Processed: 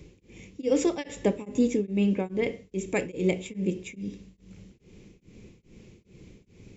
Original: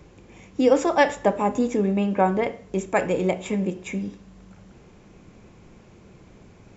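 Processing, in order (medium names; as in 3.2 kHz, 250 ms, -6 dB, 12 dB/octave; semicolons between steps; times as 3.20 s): high-order bell 1 kHz -13.5 dB; tremolo of two beating tones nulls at 2.4 Hz; trim +1 dB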